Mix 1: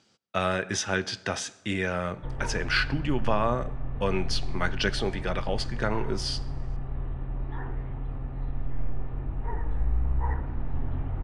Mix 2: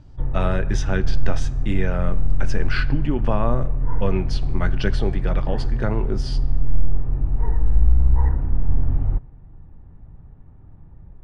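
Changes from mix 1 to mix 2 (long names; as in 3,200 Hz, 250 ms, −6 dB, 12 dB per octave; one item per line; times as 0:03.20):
background: entry −2.05 s
master: add spectral tilt −2.5 dB per octave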